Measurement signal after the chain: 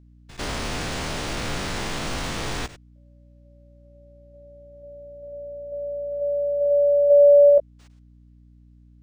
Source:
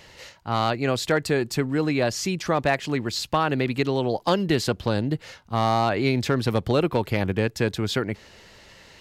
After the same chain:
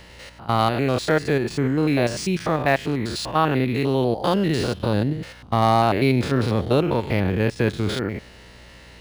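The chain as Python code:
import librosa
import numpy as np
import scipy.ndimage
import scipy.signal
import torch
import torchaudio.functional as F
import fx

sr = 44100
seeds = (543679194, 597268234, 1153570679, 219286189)

y = fx.spec_steps(x, sr, hold_ms=100)
y = fx.add_hum(y, sr, base_hz=60, snr_db=28)
y = np.interp(np.arange(len(y)), np.arange(len(y))[::3], y[::3])
y = F.gain(torch.from_numpy(y), 4.5).numpy()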